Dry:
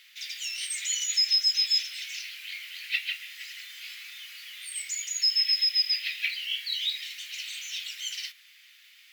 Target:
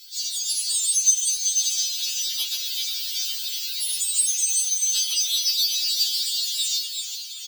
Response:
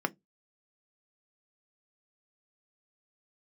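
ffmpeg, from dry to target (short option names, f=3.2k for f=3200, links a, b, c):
-filter_complex "[0:a]acompressor=threshold=-31dB:ratio=6,equalizer=f=2k:t=o:w=1:g=-11,equalizer=f=4k:t=o:w=1:g=3,equalizer=f=8k:t=o:w=1:g=-11,dynaudnorm=f=230:g=17:m=4dB,highpass=1.1k,asoftclip=type=tanh:threshold=-33dB,aecho=1:1:6.6:0.88,asplit=2[a][b];[1:a]atrim=start_sample=2205,asetrate=32193,aresample=44100[c];[b][c]afir=irnorm=-1:irlink=0,volume=-0.5dB[d];[a][d]amix=inputs=2:normalize=0,aexciter=amount=3.7:drive=7.7:freq=2.6k,asplit=8[e][f][g][h][i][j][k][l];[f]adelay=460,afreqshift=-94,volume=-5dB[m];[g]adelay=920,afreqshift=-188,volume=-10.5dB[n];[h]adelay=1380,afreqshift=-282,volume=-16dB[o];[i]adelay=1840,afreqshift=-376,volume=-21.5dB[p];[j]adelay=2300,afreqshift=-470,volume=-27.1dB[q];[k]adelay=2760,afreqshift=-564,volume=-32.6dB[r];[l]adelay=3220,afreqshift=-658,volume=-38.1dB[s];[e][m][n][o][p][q][r][s]amix=inputs=8:normalize=0,afftfilt=real='hypot(re,im)*cos(2*PI*random(0))':imag='hypot(re,im)*sin(2*PI*random(1))':win_size=512:overlap=0.75,asetrate=53802,aresample=44100,afftfilt=real='re*3.46*eq(mod(b,12),0)':imag='im*3.46*eq(mod(b,12),0)':win_size=2048:overlap=0.75,volume=2.5dB"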